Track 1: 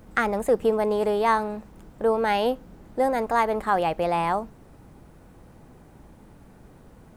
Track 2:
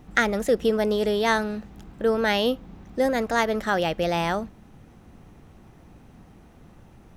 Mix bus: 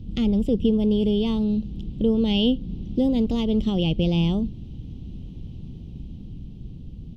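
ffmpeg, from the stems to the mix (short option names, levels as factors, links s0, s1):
-filter_complex "[0:a]bass=f=250:g=14,treble=f=4000:g=2,volume=1.12,asplit=2[s0][s1];[1:a]dynaudnorm=f=270:g=11:m=2.24,volume=1.06[s2];[s1]apad=whole_len=316190[s3];[s2][s3]sidechaincompress=threshold=0.0562:ratio=8:attack=47:release=265[s4];[s0][s4]amix=inputs=2:normalize=0,firequalizer=gain_entry='entry(250,0);entry(650,-17);entry(1600,-30);entry(3000,2);entry(8200,-21)':delay=0.05:min_phase=1"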